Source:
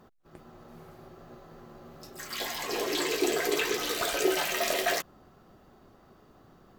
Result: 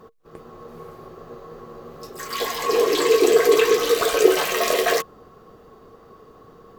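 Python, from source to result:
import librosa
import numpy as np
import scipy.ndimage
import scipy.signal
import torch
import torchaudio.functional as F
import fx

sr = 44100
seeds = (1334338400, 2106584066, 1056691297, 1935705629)

y = fx.small_body(x, sr, hz=(460.0, 1100.0), ring_ms=85, db=17)
y = F.gain(torch.from_numpy(y), 5.5).numpy()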